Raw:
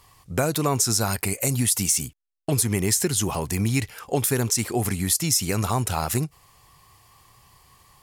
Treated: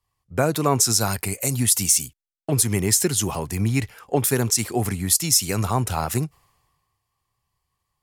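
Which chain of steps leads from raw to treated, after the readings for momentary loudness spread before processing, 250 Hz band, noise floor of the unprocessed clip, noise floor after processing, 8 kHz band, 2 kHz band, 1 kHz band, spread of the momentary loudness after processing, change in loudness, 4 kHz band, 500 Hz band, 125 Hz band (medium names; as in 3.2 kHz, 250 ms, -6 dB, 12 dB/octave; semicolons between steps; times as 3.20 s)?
6 LU, +1.0 dB, -58 dBFS, -79 dBFS, +3.0 dB, +0.5 dB, +2.0 dB, 9 LU, +2.0 dB, +2.5 dB, +2.0 dB, +1.0 dB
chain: three bands expanded up and down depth 70%; trim +1 dB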